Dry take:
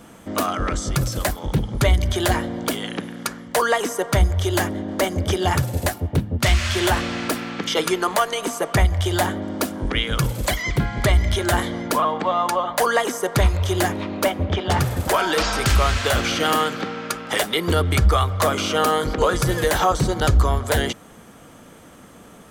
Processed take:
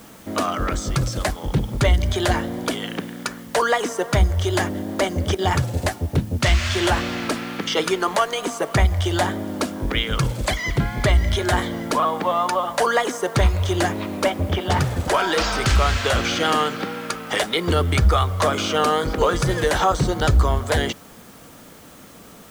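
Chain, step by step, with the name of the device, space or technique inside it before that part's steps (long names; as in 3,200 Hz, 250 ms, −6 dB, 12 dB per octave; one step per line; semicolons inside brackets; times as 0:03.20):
worn cassette (low-pass filter 8,200 Hz 12 dB per octave; tape wow and flutter; tape dropouts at 0:05.35, 34 ms −10 dB; white noise bed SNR 29 dB)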